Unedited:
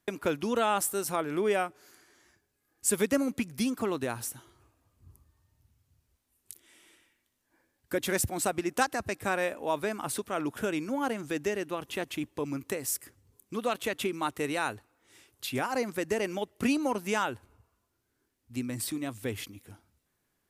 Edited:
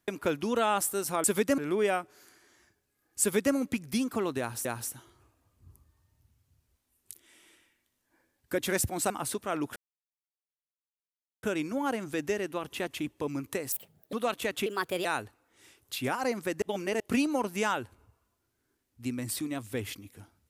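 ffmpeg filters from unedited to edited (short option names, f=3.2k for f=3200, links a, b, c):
-filter_complex "[0:a]asplit=12[a][b][c][d][e][f][g][h][i][j][k][l];[a]atrim=end=1.242[m];[b]atrim=start=2.868:end=3.212[n];[c]atrim=start=1.238:end=4.312[o];[d]atrim=start=4.048:end=8.502[p];[e]atrim=start=9.938:end=10.6,asetpts=PTS-STARTPTS,afade=t=out:st=0.658:d=0.004:c=hsin,apad=pad_dur=1.67[q];[f]atrim=start=10.6:end=12.894,asetpts=PTS-STARTPTS,afade=t=in:d=0.004:c=hsin[r];[g]atrim=start=12.89:end=13.55,asetpts=PTS-STARTPTS,asetrate=71001,aresample=44100,atrim=end_sample=18078,asetpts=PTS-STARTPTS[s];[h]atrim=start=13.546:end=14.084[t];[i]atrim=start=14.08:end=14.56,asetpts=PTS-STARTPTS,asetrate=54243,aresample=44100[u];[j]atrim=start=14.556:end=16.132[v];[k]atrim=start=16.128:end=16.512,asetpts=PTS-STARTPTS,areverse[w];[l]atrim=start=16.508[x];[m][n]acrossfade=d=0.004:c1=hsin:c2=hsin[y];[y][o]acrossfade=d=0.004:c1=hsin:c2=hsin[z];[z][p]acrossfade=d=0.004:c1=hsin:c2=hsin[aa];[q][r]concat=n=2:v=0:a=1[ab];[aa][ab]acrossfade=d=0.004:c1=hsin:c2=hsin[ac];[ac][s]acrossfade=d=0.004:c1=hsin:c2=hsin[ad];[ad][t]acrossfade=d=0.004:c1=hsin:c2=hsin[ae];[ae][u]acrossfade=d=0.004:c1=hsin:c2=hsin[af];[af][v]acrossfade=d=0.004:c1=hsin:c2=hsin[ag];[ag][w]acrossfade=d=0.004:c1=hsin:c2=hsin[ah];[ah][x]acrossfade=d=0.004:c1=hsin:c2=hsin"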